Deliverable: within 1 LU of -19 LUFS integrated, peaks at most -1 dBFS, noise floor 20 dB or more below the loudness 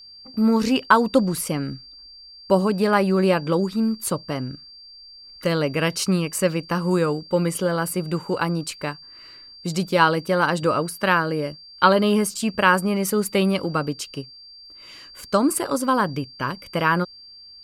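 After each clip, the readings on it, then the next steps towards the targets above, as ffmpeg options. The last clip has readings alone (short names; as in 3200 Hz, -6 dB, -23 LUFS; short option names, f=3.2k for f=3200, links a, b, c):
steady tone 4700 Hz; tone level -42 dBFS; loudness -22.0 LUFS; peak -3.0 dBFS; loudness target -19.0 LUFS
-> -af "bandreject=f=4.7k:w=30"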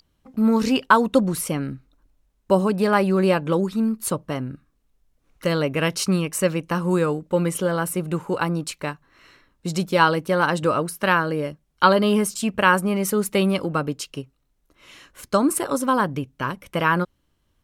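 steady tone none; loudness -22.0 LUFS; peak -3.0 dBFS; loudness target -19.0 LUFS
-> -af "volume=3dB,alimiter=limit=-1dB:level=0:latency=1"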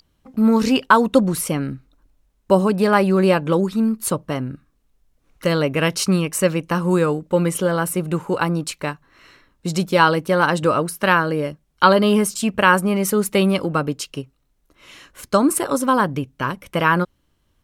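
loudness -19.0 LUFS; peak -1.0 dBFS; noise floor -66 dBFS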